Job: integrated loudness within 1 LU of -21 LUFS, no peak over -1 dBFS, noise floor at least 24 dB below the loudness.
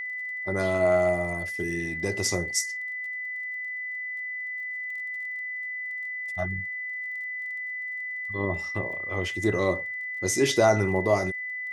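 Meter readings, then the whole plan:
ticks 20/s; steady tone 2000 Hz; tone level -31 dBFS; loudness -28.0 LUFS; peak -6.5 dBFS; loudness target -21.0 LUFS
-> de-click; notch 2000 Hz, Q 30; gain +7 dB; limiter -1 dBFS

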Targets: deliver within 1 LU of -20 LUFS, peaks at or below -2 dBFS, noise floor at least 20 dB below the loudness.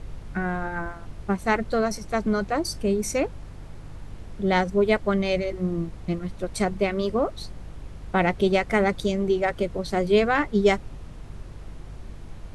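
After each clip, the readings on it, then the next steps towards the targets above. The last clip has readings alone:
hum 50 Hz; harmonics up to 150 Hz; hum level -40 dBFS; noise floor -41 dBFS; noise floor target -45 dBFS; loudness -25.0 LUFS; peak -7.0 dBFS; loudness target -20.0 LUFS
-> de-hum 50 Hz, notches 3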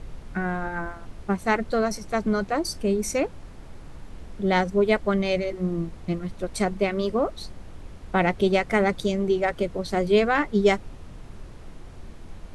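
hum none; noise floor -42 dBFS; noise floor target -45 dBFS
-> noise print and reduce 6 dB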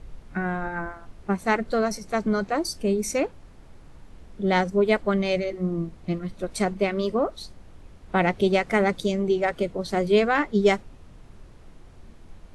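noise floor -48 dBFS; loudness -25.0 LUFS; peak -7.5 dBFS; loudness target -20.0 LUFS
-> gain +5 dB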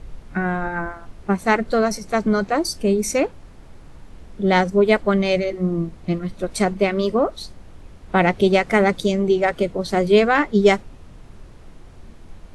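loudness -20.0 LUFS; peak -2.5 dBFS; noise floor -43 dBFS

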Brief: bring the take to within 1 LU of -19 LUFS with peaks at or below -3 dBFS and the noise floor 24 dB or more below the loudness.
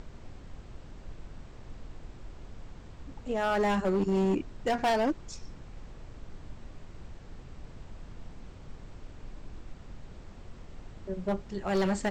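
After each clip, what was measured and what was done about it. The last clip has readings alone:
clipped 1.6%; flat tops at -22.5 dBFS; noise floor -49 dBFS; noise floor target -54 dBFS; loudness -30.0 LUFS; peak -22.5 dBFS; loudness target -19.0 LUFS
-> clip repair -22.5 dBFS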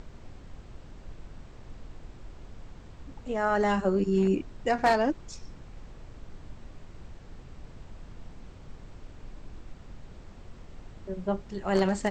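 clipped 0.0%; noise floor -49 dBFS; noise floor target -52 dBFS
-> noise print and reduce 6 dB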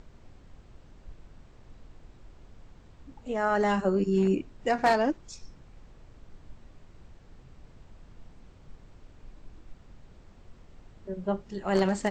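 noise floor -54 dBFS; loudness -27.5 LUFS; peak -13.5 dBFS; loudness target -19.0 LUFS
-> gain +8.5 dB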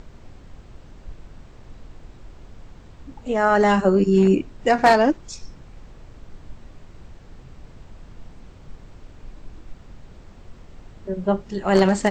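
loudness -19.0 LUFS; peak -5.0 dBFS; noise floor -46 dBFS

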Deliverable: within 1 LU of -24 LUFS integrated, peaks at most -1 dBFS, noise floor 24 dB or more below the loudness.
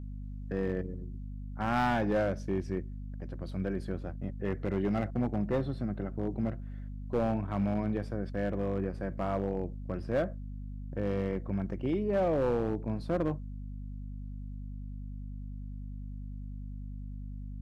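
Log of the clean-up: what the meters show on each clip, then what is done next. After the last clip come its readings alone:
clipped 1.2%; flat tops at -23.0 dBFS; hum 50 Hz; harmonics up to 250 Hz; hum level -38 dBFS; loudness -34.5 LUFS; peak -23.0 dBFS; loudness target -24.0 LUFS
-> clip repair -23 dBFS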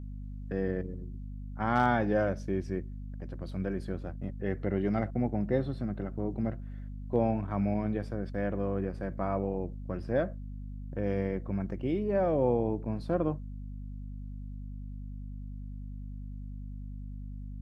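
clipped 0.0%; hum 50 Hz; harmonics up to 250 Hz; hum level -38 dBFS
-> de-hum 50 Hz, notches 5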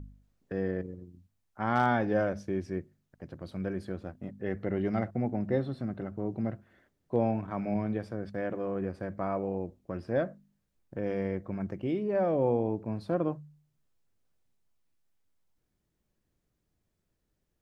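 hum none; loudness -32.5 LUFS; peak -14.0 dBFS; loudness target -24.0 LUFS
-> gain +8.5 dB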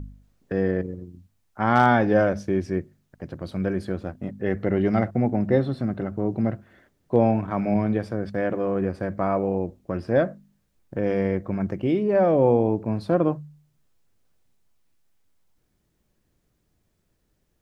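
loudness -24.0 LUFS; peak -5.5 dBFS; noise floor -71 dBFS

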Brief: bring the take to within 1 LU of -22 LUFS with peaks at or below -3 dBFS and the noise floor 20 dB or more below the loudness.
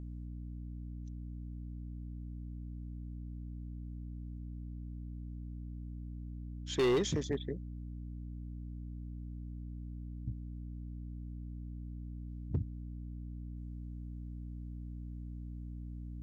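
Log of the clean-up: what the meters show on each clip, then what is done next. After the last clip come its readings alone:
clipped 0.4%; flat tops at -25.0 dBFS; hum 60 Hz; harmonics up to 300 Hz; hum level -41 dBFS; loudness -42.0 LUFS; peak -25.0 dBFS; loudness target -22.0 LUFS
-> clip repair -25 dBFS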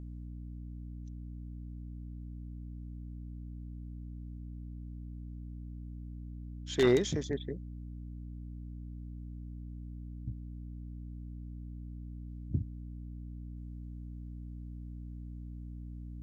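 clipped 0.0%; hum 60 Hz; harmonics up to 300 Hz; hum level -41 dBFS
-> de-hum 60 Hz, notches 5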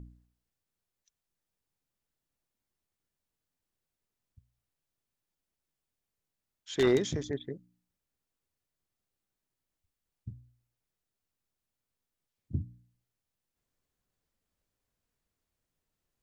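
hum none; loudness -31.5 LUFS; peak -15.0 dBFS; loudness target -22.0 LUFS
-> gain +9.5 dB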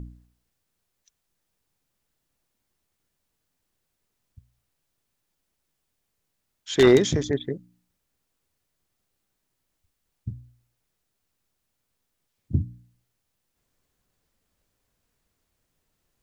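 loudness -22.0 LUFS; peak -5.5 dBFS; noise floor -79 dBFS

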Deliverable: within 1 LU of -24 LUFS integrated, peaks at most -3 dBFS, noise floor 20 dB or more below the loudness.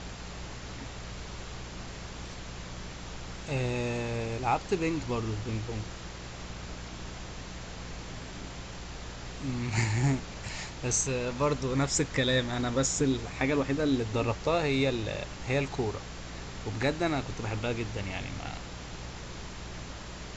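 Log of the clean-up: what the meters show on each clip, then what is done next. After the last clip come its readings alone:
hum 60 Hz; harmonics up to 180 Hz; hum level -44 dBFS; noise floor -42 dBFS; noise floor target -53 dBFS; loudness -32.5 LUFS; peak -15.0 dBFS; loudness target -24.0 LUFS
-> de-hum 60 Hz, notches 3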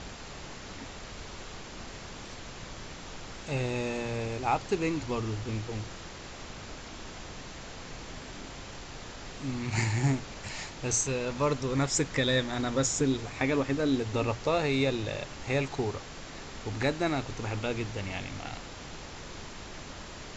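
hum none; noise floor -44 dBFS; noise floor target -51 dBFS
-> noise print and reduce 7 dB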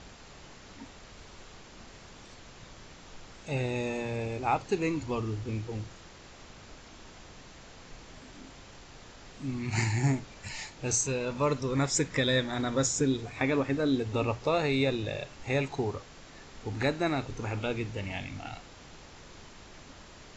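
noise floor -51 dBFS; loudness -31.0 LUFS; peak -15.0 dBFS; loudness target -24.0 LUFS
-> gain +7 dB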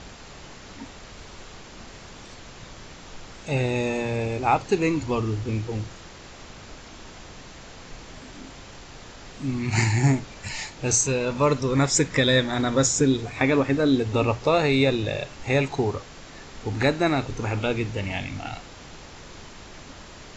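loudness -24.0 LUFS; peak -8.0 dBFS; noise floor -44 dBFS

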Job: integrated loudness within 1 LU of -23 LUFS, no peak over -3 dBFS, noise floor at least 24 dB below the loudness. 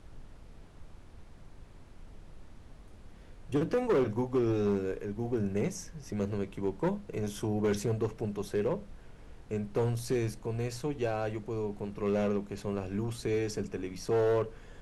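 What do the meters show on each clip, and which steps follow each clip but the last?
clipped 1.2%; flat tops at -22.5 dBFS; noise floor -52 dBFS; noise floor target -57 dBFS; loudness -32.5 LUFS; peak -22.5 dBFS; loudness target -23.0 LUFS
-> clip repair -22.5 dBFS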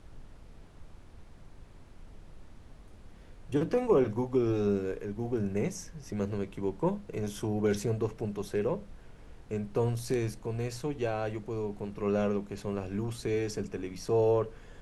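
clipped 0.0%; noise floor -52 dBFS; noise floor target -56 dBFS
-> noise print and reduce 6 dB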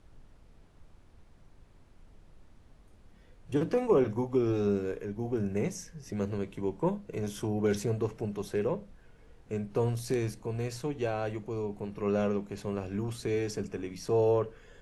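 noise floor -58 dBFS; loudness -32.0 LUFS; peak -14.0 dBFS; loudness target -23.0 LUFS
-> gain +9 dB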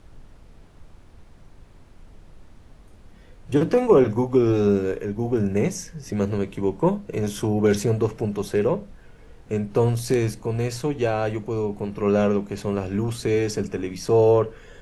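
loudness -23.0 LUFS; peak -5.0 dBFS; noise floor -49 dBFS

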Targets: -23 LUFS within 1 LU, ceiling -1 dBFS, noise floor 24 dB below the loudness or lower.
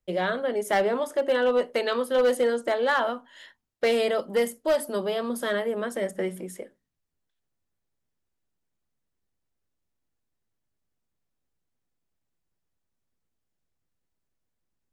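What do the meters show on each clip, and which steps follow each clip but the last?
clipped 0.5%; flat tops at -17.0 dBFS; loudness -26.0 LUFS; peak -17.0 dBFS; loudness target -23.0 LUFS
-> clip repair -17 dBFS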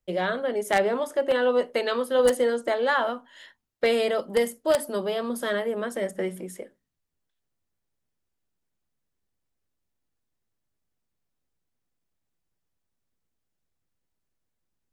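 clipped 0.0%; loudness -25.5 LUFS; peak -8.0 dBFS; loudness target -23.0 LUFS
-> gain +2.5 dB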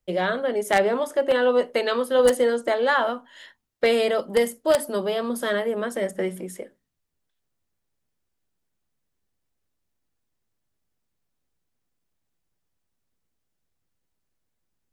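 loudness -23.0 LUFS; peak -5.5 dBFS; noise floor -78 dBFS

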